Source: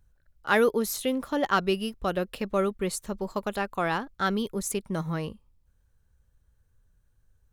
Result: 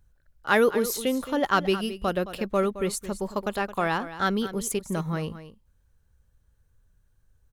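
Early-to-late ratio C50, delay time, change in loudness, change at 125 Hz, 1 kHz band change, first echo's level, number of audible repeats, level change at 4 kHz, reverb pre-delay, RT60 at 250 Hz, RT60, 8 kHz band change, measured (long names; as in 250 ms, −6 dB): no reverb audible, 218 ms, +1.5 dB, +1.5 dB, +1.5 dB, −13.5 dB, 1, +1.5 dB, no reverb audible, no reverb audible, no reverb audible, +1.5 dB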